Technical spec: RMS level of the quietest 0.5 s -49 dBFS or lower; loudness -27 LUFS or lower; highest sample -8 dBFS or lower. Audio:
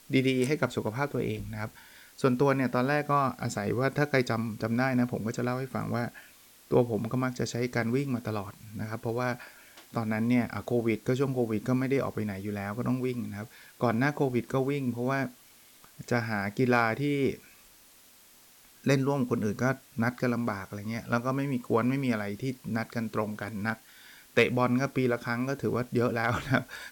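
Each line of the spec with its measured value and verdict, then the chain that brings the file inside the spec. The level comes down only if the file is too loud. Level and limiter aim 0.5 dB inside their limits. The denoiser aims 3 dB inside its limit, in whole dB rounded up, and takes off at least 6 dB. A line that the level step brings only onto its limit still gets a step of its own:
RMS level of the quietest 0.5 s -57 dBFS: OK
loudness -29.5 LUFS: OK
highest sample -11.5 dBFS: OK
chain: none

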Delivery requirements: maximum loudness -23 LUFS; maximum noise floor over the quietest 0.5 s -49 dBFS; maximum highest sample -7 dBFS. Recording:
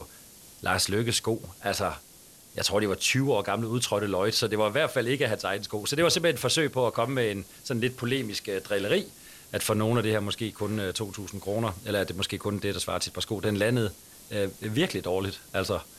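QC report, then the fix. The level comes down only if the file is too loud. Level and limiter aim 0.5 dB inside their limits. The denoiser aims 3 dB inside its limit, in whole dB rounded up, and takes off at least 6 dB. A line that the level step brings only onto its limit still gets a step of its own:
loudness -28.0 LUFS: OK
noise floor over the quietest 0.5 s -52 dBFS: OK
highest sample -10.5 dBFS: OK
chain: none

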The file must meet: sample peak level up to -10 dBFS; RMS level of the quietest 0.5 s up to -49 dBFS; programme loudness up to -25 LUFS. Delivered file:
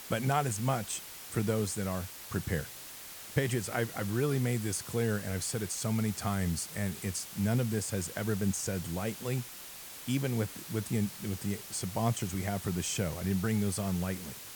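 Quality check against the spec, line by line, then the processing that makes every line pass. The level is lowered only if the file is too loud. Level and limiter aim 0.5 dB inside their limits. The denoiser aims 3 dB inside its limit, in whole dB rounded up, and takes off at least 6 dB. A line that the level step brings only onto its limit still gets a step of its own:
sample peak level -12.5 dBFS: OK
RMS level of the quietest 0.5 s -46 dBFS: fail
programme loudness -33.0 LUFS: OK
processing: denoiser 6 dB, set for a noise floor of -46 dBFS

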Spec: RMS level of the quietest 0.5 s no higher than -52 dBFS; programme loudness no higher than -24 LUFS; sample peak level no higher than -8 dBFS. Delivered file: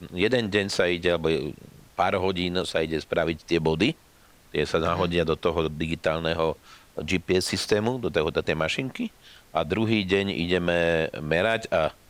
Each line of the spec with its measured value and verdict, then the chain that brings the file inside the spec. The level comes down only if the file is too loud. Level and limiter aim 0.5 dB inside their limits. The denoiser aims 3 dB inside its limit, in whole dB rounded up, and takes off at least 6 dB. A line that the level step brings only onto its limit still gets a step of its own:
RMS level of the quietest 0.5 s -55 dBFS: OK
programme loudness -25.5 LUFS: OK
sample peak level -10.0 dBFS: OK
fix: none

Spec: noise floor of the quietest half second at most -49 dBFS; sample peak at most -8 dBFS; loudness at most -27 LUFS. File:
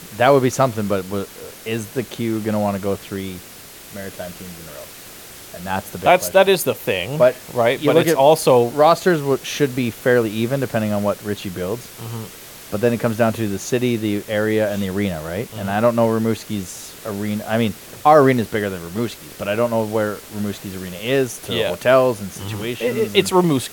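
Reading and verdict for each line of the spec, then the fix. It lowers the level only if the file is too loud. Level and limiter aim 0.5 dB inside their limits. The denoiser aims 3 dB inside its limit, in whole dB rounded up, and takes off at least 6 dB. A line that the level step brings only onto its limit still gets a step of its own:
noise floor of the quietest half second -40 dBFS: fail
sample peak -1.5 dBFS: fail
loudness -19.0 LUFS: fail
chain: denoiser 6 dB, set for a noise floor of -40 dBFS; gain -8.5 dB

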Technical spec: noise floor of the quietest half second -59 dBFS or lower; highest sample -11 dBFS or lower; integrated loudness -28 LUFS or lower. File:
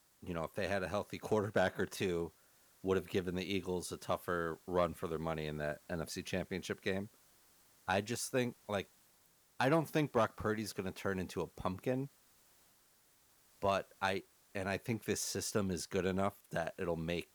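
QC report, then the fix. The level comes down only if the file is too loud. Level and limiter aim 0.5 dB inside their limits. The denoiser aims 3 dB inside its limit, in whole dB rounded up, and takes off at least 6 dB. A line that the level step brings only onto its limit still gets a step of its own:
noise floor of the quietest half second -69 dBFS: OK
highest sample -20.0 dBFS: OK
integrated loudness -38.0 LUFS: OK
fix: none

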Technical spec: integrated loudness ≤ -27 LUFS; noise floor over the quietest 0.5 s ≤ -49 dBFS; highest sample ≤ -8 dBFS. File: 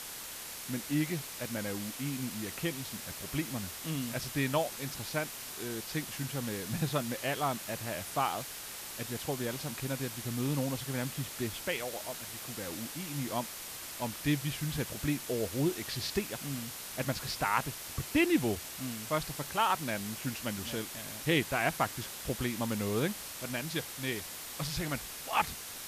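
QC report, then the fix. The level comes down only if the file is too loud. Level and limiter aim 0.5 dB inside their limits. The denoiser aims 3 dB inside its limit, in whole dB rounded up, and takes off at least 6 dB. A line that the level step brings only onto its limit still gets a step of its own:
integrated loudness -34.5 LUFS: OK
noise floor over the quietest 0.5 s -43 dBFS: fail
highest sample -13.0 dBFS: OK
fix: denoiser 9 dB, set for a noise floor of -43 dBFS

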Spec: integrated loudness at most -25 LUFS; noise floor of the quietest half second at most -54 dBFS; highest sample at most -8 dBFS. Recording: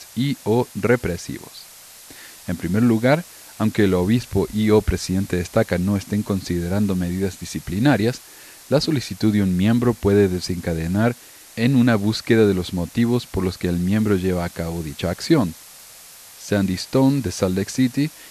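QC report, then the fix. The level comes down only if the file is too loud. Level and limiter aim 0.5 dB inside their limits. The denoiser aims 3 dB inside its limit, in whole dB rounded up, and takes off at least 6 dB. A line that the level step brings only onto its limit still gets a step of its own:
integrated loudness -20.5 LUFS: fail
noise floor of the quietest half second -43 dBFS: fail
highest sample -3.5 dBFS: fail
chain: denoiser 9 dB, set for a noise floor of -43 dBFS; gain -5 dB

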